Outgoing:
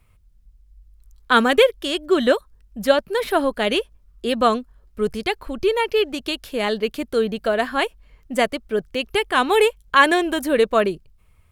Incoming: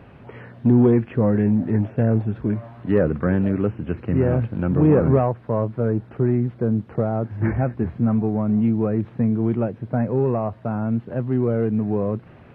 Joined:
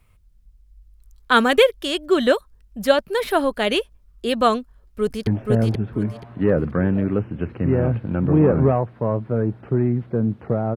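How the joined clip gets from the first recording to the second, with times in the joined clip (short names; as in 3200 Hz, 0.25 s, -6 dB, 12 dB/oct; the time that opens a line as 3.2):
outgoing
4.62–5.27 echo throw 0.48 s, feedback 25%, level -1.5 dB
5.27 switch to incoming from 1.75 s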